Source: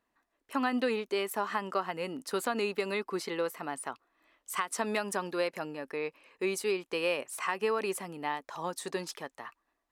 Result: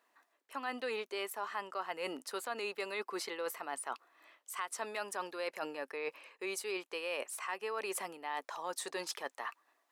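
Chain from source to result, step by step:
high-pass filter 470 Hz 12 dB per octave
reversed playback
downward compressor 5 to 1, threshold −44 dBFS, peak gain reduction 16 dB
reversed playback
level +7 dB

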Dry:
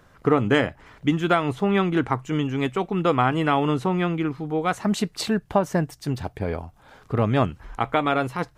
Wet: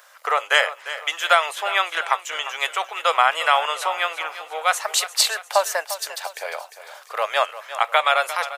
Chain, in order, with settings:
elliptic high-pass filter 550 Hz, stop band 60 dB
spectral tilt +3.5 dB per octave
repeating echo 350 ms, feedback 46%, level −13.5 dB
level +5 dB

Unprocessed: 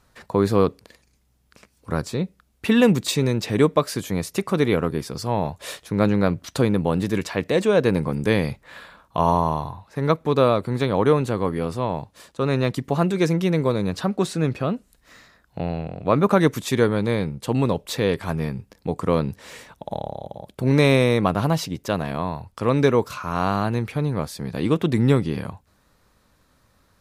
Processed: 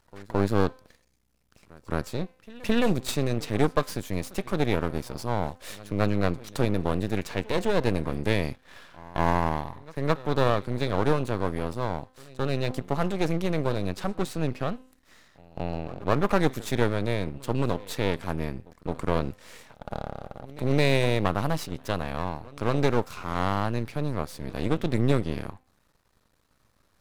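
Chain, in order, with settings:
hum removal 257.7 Hz, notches 17
echo ahead of the sound 217 ms −21.5 dB
half-wave rectification
level −2.5 dB

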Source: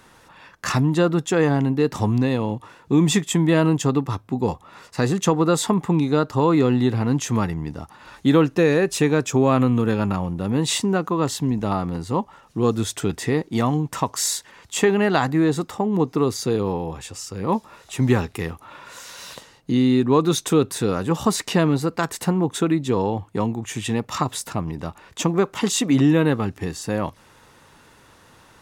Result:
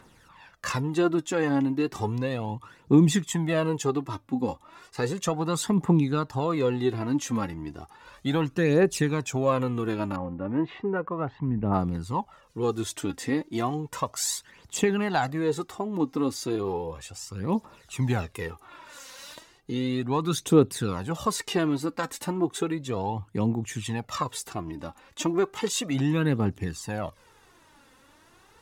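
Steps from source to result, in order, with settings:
phase shifter 0.34 Hz, delay 3.9 ms, feedback 58%
0:10.16–0:11.74: low-pass filter 2,100 Hz 24 dB per octave
level −7.5 dB

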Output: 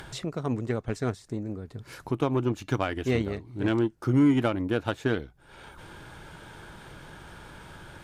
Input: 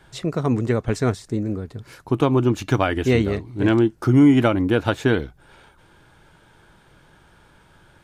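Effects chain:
harmonic generator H 7 −28 dB, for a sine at −4.5 dBFS
upward compression, threshold −22 dBFS
level −7.5 dB

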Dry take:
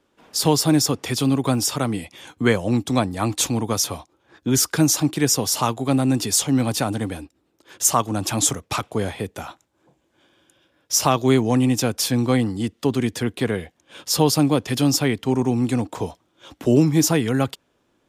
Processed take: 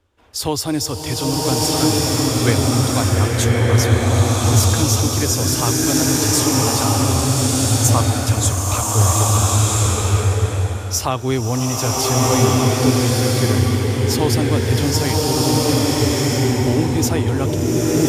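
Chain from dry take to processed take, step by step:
low shelf with overshoot 120 Hz +11 dB, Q 3
slow-attack reverb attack 1,370 ms, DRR −6 dB
level −2 dB

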